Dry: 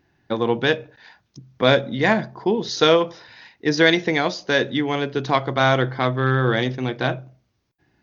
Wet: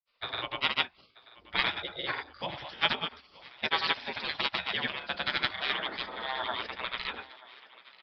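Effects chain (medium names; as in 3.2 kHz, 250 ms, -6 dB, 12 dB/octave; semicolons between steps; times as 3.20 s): spectral gate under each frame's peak -20 dB weak; granulator, pitch spread up and down by 0 st; resampled via 11.025 kHz; on a send: thinning echo 934 ms, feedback 59%, high-pass 330 Hz, level -19.5 dB; on the sum: trim +4 dB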